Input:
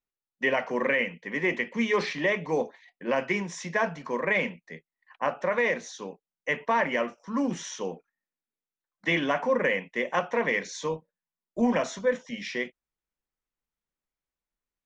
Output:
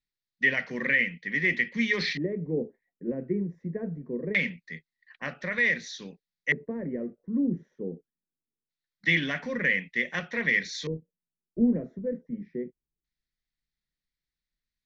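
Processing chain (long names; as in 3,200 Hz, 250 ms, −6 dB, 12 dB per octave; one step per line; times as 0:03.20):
drawn EQ curve 150 Hz 0 dB, 990 Hz −22 dB, 1,900 Hz −1 dB, 2,900 Hz −12 dB, 4,500 Hz −1 dB
auto-filter low-pass square 0.23 Hz 410–3,800 Hz
level +4.5 dB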